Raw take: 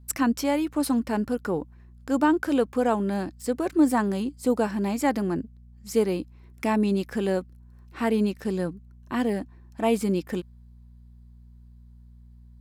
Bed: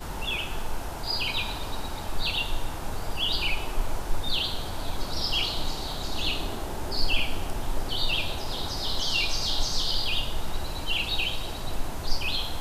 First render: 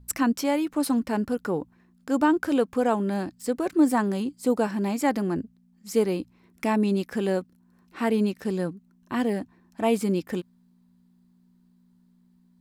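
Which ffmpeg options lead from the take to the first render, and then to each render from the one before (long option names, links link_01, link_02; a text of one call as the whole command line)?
ffmpeg -i in.wav -af "bandreject=frequency=60:width_type=h:width=4,bandreject=frequency=120:width_type=h:width=4" out.wav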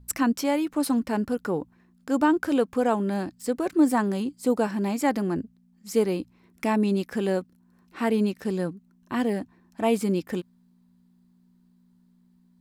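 ffmpeg -i in.wav -af anull out.wav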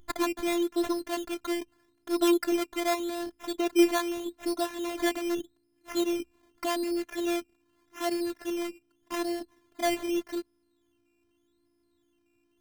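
ffmpeg -i in.wav -af "acrusher=samples=13:mix=1:aa=0.000001:lfo=1:lforange=7.8:lforate=0.83,afftfilt=real='hypot(re,im)*cos(PI*b)':imag='0':win_size=512:overlap=0.75" out.wav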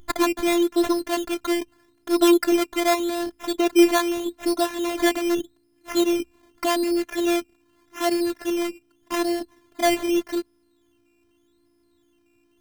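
ffmpeg -i in.wav -af "volume=7.5dB,alimiter=limit=-2dB:level=0:latency=1" out.wav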